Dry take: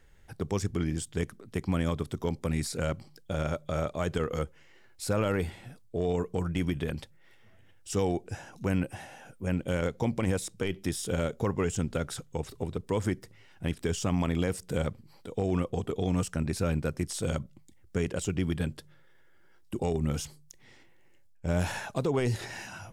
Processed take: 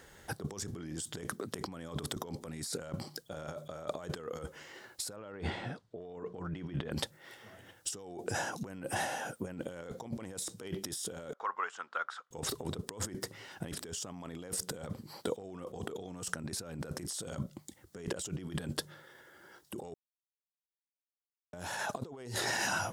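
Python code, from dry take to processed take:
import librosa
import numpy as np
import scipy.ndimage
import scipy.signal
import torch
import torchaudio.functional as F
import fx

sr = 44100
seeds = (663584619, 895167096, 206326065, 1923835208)

y = fx.lowpass(x, sr, hz=3400.0, slope=12, at=(5.16, 6.92))
y = fx.ladder_bandpass(y, sr, hz=1400.0, resonance_pct=50, at=(11.33, 12.31))
y = fx.edit(y, sr, fx.silence(start_s=19.94, length_s=1.59), tone=tone)
y = fx.highpass(y, sr, hz=340.0, slope=6)
y = fx.peak_eq(y, sr, hz=2400.0, db=-7.5, octaves=0.6)
y = fx.over_compress(y, sr, threshold_db=-45.0, ratio=-1.0)
y = y * librosa.db_to_amplitude(4.5)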